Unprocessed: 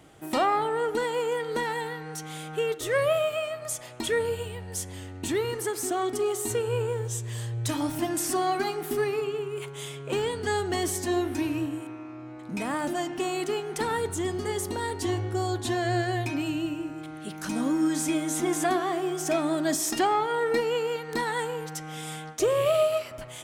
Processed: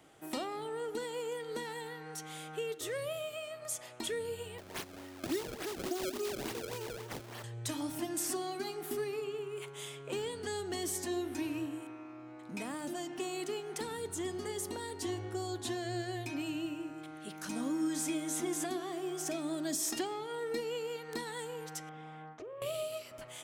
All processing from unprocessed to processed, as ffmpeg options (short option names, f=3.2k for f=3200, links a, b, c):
-filter_complex "[0:a]asettb=1/sr,asplit=3[a][b][c];[a]atrim=end=4.584[d];[b]atrim=start=4.58:end=7.44,asetpts=PTS-STARTPTS,afade=t=in:d=0.004:c=qsin,afade=t=out:st=2.856:d=0.004:c=qsin,highpass=120,aecho=1:1:3.2:0.62,atrim=end_sample=126126,acrusher=samples=27:mix=1:aa=0.000001:lfo=1:lforange=43.2:lforate=3.5[e];[c]atrim=start=7.436[f];[d][e]acrossfade=d=0.004:c1=hsin:c2=qsin[g];[g][f]acrossfade=d=0.004:c1=qsin:c2=hsin,asettb=1/sr,asplit=3[h][i][j];[h]atrim=end=21.894[k];[i]atrim=start=21.89:end=22.62,asetpts=PTS-STARTPTS,afade=t=in:d=0.004:c=qsin,afade=t=out:st=0.726:d=0.004:c=qsin,lowpass=1.5k,asplit=2[l][m];[m]adelay=46,volume=-12dB[n];[l][n]amix=inputs=2:normalize=0,atrim=end_sample=32193,acompressor=threshold=-36dB:ratio=10:attack=3.2:release=140:knee=1:detection=peak[o];[j]atrim=start=22.616[p];[k][o]acrossfade=d=0.004:c1=hsin:c2=qsin[q];[q][p]acrossfade=d=0.004:c1=qsin:c2=hsin,lowshelf=f=160:g=-10.5,acrossover=split=430|3000[r][s][t];[s]acompressor=threshold=-38dB:ratio=6[u];[r][u][t]amix=inputs=3:normalize=0,volume=-5.5dB"